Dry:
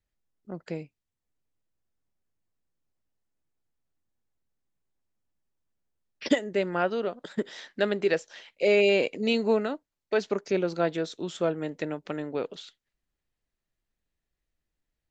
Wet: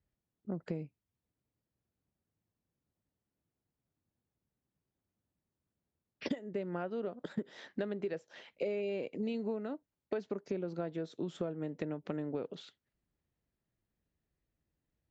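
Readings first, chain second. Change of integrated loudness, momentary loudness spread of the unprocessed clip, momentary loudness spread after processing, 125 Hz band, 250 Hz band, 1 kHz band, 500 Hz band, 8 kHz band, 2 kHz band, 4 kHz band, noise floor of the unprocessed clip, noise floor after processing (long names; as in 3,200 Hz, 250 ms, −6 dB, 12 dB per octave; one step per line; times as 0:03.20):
−11.5 dB, 15 LU, 8 LU, −5.0 dB, −7.5 dB, −13.5 dB, −12.0 dB, can't be measured, −17.5 dB, −17.0 dB, below −85 dBFS, below −85 dBFS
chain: high-pass filter 100 Hz
spectral tilt −3 dB per octave
downward compressor 10 to 1, threshold −32 dBFS, peak gain reduction 20 dB
level −1.5 dB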